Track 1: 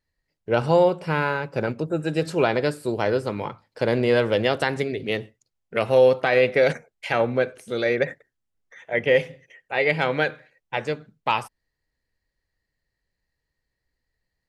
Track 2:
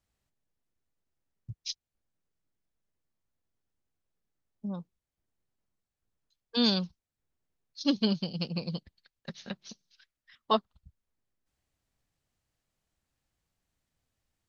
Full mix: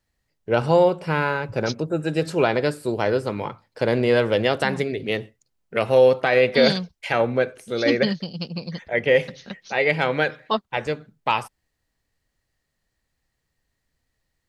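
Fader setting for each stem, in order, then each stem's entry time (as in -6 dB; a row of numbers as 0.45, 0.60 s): +1.0, +3.0 dB; 0.00, 0.00 s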